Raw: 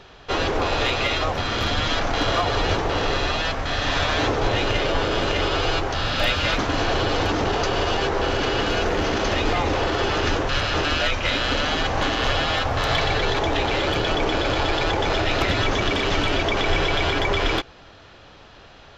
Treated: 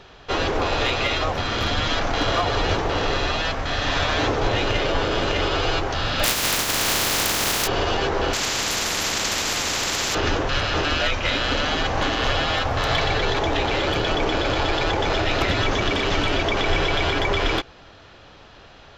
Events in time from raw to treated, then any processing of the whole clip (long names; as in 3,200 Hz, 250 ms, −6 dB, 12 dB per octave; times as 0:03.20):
0:06.23–0:07.66: compressing power law on the bin magnitudes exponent 0.18
0:08.33–0:10.15: every bin compressed towards the loudest bin 10 to 1